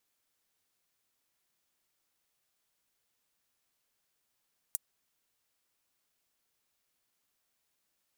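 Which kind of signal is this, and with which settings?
closed hi-hat, high-pass 8.3 kHz, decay 0.03 s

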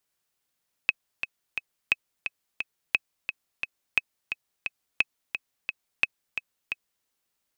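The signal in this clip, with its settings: metronome 175 bpm, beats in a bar 3, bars 6, 2.56 kHz, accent 8.5 dB -7 dBFS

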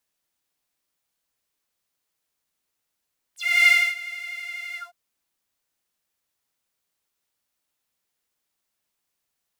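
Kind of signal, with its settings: synth patch with pulse-width modulation F5, sub -17.5 dB, filter highpass, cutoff 720 Hz, Q 10, filter envelope 4 oct, filter decay 0.07 s, attack 316 ms, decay 0.27 s, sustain -19.5 dB, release 0.15 s, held 1.41 s, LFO 12 Hz, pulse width 28%, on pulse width 20%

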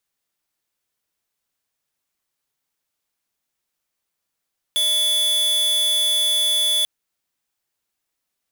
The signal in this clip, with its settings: tone square 3.44 kHz -19 dBFS 2.09 s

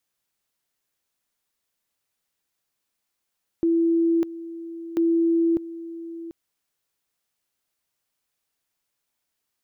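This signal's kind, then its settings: two-level tone 333 Hz -17 dBFS, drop 15.5 dB, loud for 0.60 s, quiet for 0.74 s, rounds 2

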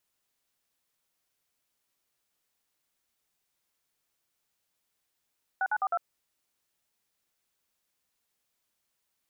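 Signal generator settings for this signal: DTMF "6942", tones 52 ms, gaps 52 ms, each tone -27.5 dBFS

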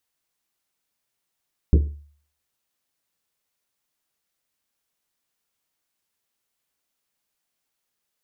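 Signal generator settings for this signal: Risset drum, pitch 73 Hz, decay 0.51 s, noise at 320 Hz, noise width 230 Hz, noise 20%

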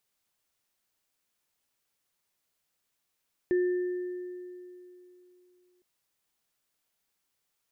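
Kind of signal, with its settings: sine partials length 2.31 s, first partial 360 Hz, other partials 1.78 kHz, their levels -17 dB, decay 3.06 s, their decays 2.11 s, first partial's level -21.5 dB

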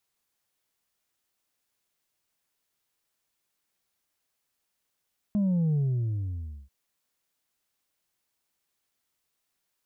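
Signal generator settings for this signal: sub drop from 210 Hz, over 1.34 s, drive 2.5 dB, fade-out 0.95 s, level -22.5 dB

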